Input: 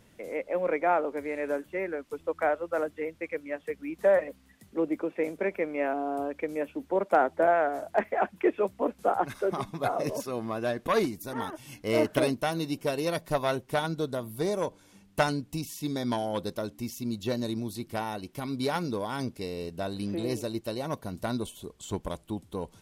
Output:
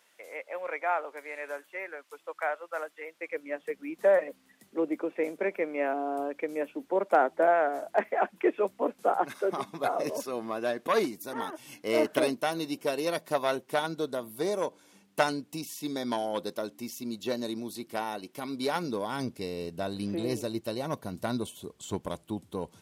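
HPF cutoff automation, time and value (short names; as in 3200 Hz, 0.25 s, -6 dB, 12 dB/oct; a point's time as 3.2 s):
3.04 s 830 Hz
3.49 s 250 Hz
18.64 s 250 Hz
19.4 s 100 Hz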